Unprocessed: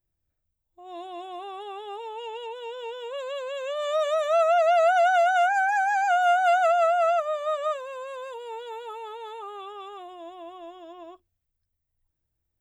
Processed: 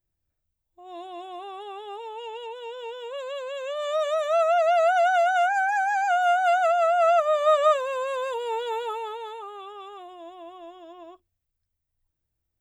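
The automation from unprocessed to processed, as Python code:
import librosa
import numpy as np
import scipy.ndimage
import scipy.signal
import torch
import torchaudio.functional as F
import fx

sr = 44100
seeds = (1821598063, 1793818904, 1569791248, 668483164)

y = fx.gain(x, sr, db=fx.line((6.83, -0.5), (7.48, 8.0), (8.81, 8.0), (9.5, -1.0)))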